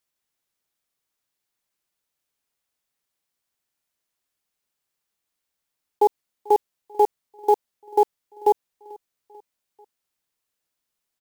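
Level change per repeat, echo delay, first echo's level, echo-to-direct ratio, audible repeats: -5.5 dB, 0.441 s, -24.0 dB, -22.5 dB, 3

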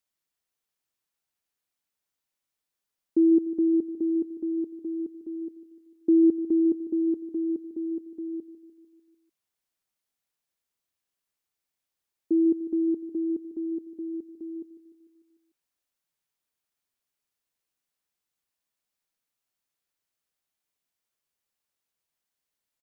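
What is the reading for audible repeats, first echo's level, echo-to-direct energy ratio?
5, -14.0 dB, -12.0 dB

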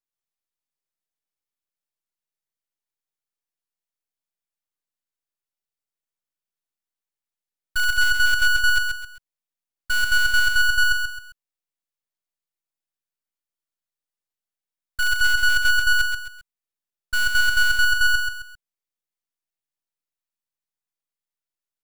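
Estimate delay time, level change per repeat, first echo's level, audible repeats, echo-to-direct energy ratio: 0.132 s, -9.0 dB, -5.0 dB, 3, -4.5 dB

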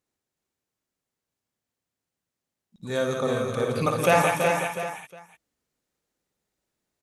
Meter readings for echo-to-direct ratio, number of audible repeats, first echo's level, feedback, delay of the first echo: 1.0 dB, 9, -5.0 dB, no steady repeat, 57 ms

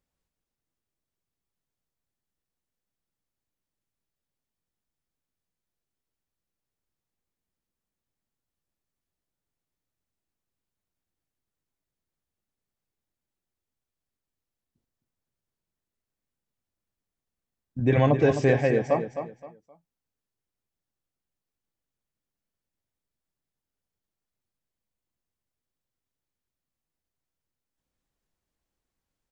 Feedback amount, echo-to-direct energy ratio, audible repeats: 27%, -8.5 dB, 3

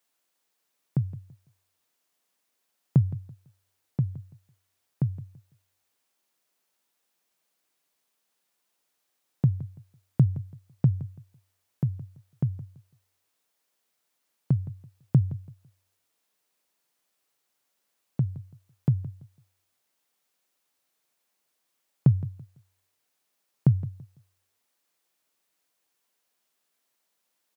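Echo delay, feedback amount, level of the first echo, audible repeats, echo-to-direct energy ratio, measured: 0.167 s, 26%, -16.5 dB, 2, -16.0 dB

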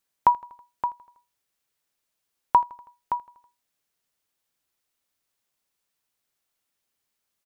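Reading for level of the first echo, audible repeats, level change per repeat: -22.0 dB, 3, -4.5 dB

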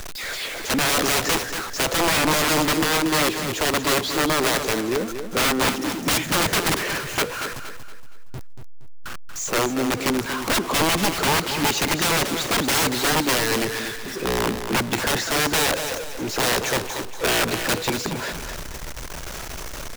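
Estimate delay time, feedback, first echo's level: 0.234 s, 36%, -8.5 dB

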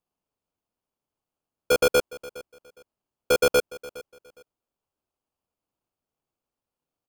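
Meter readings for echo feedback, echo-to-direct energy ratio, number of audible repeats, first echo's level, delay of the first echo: 23%, -19.5 dB, 2, -19.5 dB, 0.412 s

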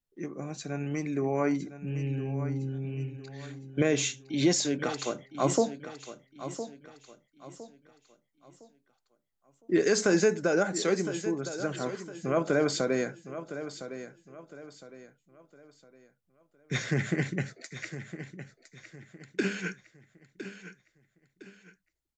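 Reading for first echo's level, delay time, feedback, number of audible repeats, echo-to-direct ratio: -12.0 dB, 1.01 s, 35%, 3, -11.5 dB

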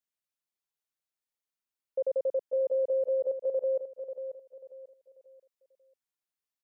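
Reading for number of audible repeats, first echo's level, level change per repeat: 3, -9.5 dB, -9.5 dB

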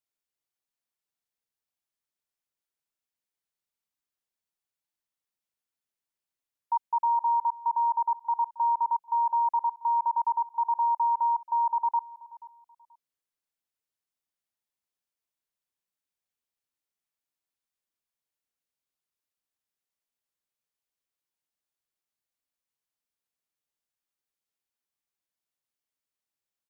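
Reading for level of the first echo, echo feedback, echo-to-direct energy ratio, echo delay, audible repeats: -20.0 dB, 24%, -20.0 dB, 0.482 s, 2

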